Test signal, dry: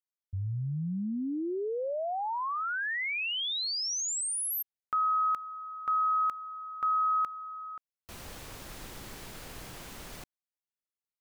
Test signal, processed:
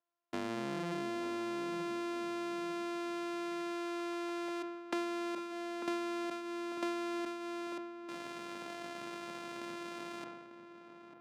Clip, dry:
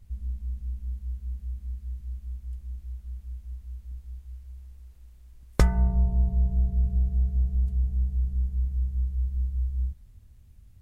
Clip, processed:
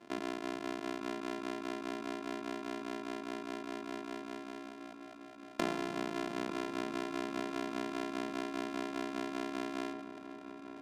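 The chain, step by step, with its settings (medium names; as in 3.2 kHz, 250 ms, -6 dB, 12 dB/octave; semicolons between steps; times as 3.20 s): sorted samples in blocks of 128 samples; high-pass 180 Hz 24 dB/octave; tone controls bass -3 dB, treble -3 dB; compression 6:1, threshold -37 dBFS; distance through air 54 m; filtered feedback delay 896 ms, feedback 45%, low-pass 1.6 kHz, level -9 dB; decay stretcher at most 42 dB/s; trim +3.5 dB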